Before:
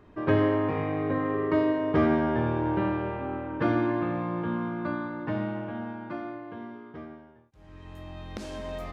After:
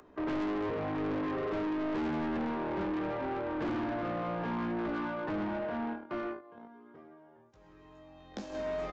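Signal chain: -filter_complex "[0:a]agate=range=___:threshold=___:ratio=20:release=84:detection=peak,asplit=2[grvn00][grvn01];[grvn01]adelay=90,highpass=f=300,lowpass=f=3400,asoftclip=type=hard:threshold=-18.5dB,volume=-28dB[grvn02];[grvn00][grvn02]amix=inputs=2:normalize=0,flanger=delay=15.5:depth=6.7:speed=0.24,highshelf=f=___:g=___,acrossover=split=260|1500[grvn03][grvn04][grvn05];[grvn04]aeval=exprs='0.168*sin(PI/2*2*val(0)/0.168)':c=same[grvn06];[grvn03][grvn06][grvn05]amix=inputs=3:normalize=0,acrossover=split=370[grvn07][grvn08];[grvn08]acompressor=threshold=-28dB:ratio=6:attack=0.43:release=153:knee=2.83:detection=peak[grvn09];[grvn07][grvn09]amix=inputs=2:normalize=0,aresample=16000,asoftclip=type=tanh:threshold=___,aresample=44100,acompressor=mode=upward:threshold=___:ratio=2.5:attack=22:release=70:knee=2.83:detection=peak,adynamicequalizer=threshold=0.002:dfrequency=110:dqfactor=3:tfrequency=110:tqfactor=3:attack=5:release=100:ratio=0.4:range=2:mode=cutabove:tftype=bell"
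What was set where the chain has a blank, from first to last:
-20dB, -38dB, 3600, 9, -31dB, -50dB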